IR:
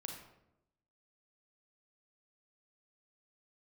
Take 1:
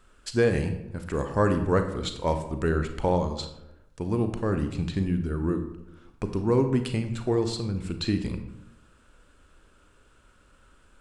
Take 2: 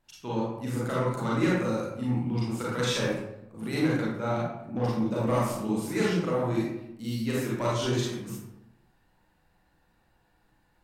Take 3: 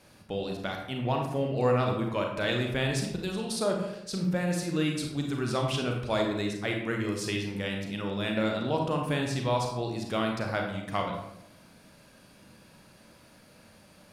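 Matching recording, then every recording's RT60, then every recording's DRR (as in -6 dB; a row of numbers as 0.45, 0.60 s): 3; 0.90, 0.85, 0.85 s; 7.0, -6.5, 1.5 dB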